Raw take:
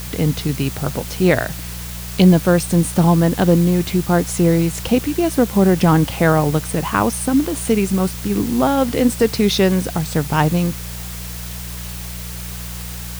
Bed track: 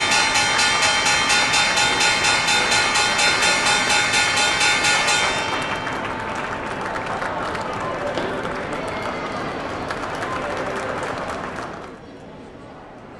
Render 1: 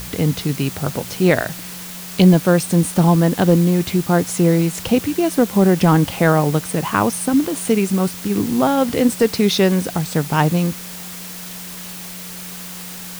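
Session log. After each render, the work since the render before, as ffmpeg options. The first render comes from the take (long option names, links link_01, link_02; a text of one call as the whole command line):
ffmpeg -i in.wav -af "bandreject=frequency=60:width_type=h:width=4,bandreject=frequency=120:width_type=h:width=4" out.wav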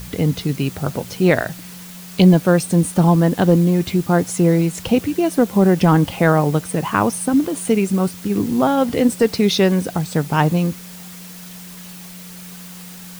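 ffmpeg -i in.wav -af "afftdn=noise_reduction=6:noise_floor=-33" out.wav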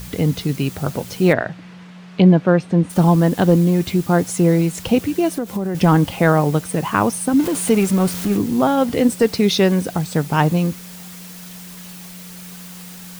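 ffmpeg -i in.wav -filter_complex "[0:a]asplit=3[link_01][link_02][link_03];[link_01]afade=type=out:start_time=1.32:duration=0.02[link_04];[link_02]highpass=100,lowpass=2500,afade=type=in:start_time=1.32:duration=0.02,afade=type=out:start_time=2.89:duration=0.02[link_05];[link_03]afade=type=in:start_time=2.89:duration=0.02[link_06];[link_04][link_05][link_06]amix=inputs=3:normalize=0,asettb=1/sr,asplit=3[link_07][link_08][link_09];[link_07]atrim=end=5.294[link_10];[link_08]atrim=start=5.29:end=5.75,asetpts=PTS-STARTPTS,afade=type=in:duration=0.004:curve=qsin,afade=type=out:start_time=0.456:duration=0.004:curve=qsin,acompressor=threshold=-19dB:ratio=5:attack=3.2:release=140:knee=1:detection=peak[link_11];[link_09]atrim=start=5.746[link_12];[link_10][link_11]acrossfade=duration=0.004:curve1=hsin:curve2=qsin[link_13];[link_13][link_12]acrossfade=duration=0.004:curve1=qsin:curve2=hsin,asettb=1/sr,asplit=3[link_14][link_15][link_16];[link_14]atrim=end=7.394[link_17];[link_15]atrim=start=7.39:end=8.37,asetpts=PTS-STARTPTS,afade=type=in:duration=0.004:curve=qsin,afade=type=out:start_time=0.976:duration=0.004:curve=qsin,aeval=exprs='val(0)+0.5*0.0631*sgn(val(0))':channel_layout=same[link_18];[link_16]atrim=start=8.366[link_19];[link_17][link_18]acrossfade=duration=0.004:curve1=hsin:curve2=qsin[link_20];[link_20][link_19]acrossfade=duration=0.004:curve1=qsin:curve2=hsin" out.wav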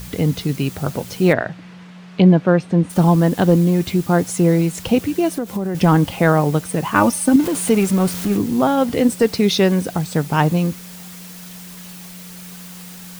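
ffmpeg -i in.wav -filter_complex "[0:a]asettb=1/sr,asplit=3[link_01][link_02][link_03];[link_01]atrim=end=6.954[link_04];[link_02]atrim=start=6.95:end=7.36,asetpts=PTS-STARTPTS,afade=type=in:duration=0.004:curve=qsin,afade=type=out:start_time=0.406:duration=0.004:curve=qsin,aecho=1:1:3.4:0.99,atrim=end_sample=18081[link_05];[link_03]atrim=start=7.356[link_06];[link_04][link_05]acrossfade=duration=0.004:curve1=hsin:curve2=qsin[link_07];[link_07][link_06]acrossfade=duration=0.004:curve1=qsin:curve2=hsin" out.wav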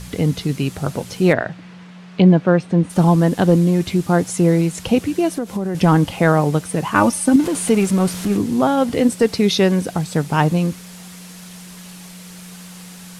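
ffmpeg -i in.wav -af "lowpass=frequency=12000:width=0.5412,lowpass=frequency=12000:width=1.3066" out.wav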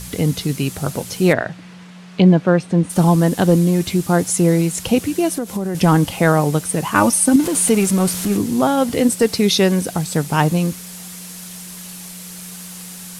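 ffmpeg -i in.wav -af "highshelf=frequency=6600:gain=11.5" out.wav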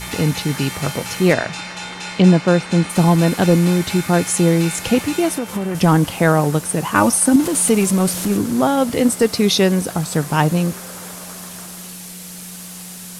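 ffmpeg -i in.wav -i bed.wav -filter_complex "[1:a]volume=-13dB[link_01];[0:a][link_01]amix=inputs=2:normalize=0" out.wav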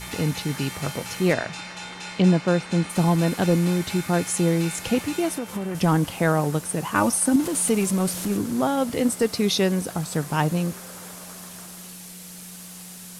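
ffmpeg -i in.wav -af "volume=-6.5dB" out.wav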